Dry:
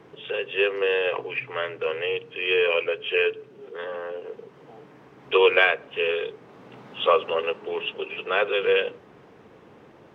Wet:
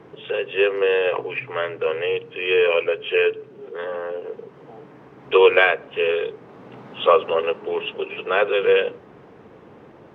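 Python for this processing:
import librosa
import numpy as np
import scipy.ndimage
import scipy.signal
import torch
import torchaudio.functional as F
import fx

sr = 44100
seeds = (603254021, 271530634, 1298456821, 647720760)

y = fx.high_shelf(x, sr, hz=2500.0, db=-8.0)
y = y * librosa.db_to_amplitude(5.0)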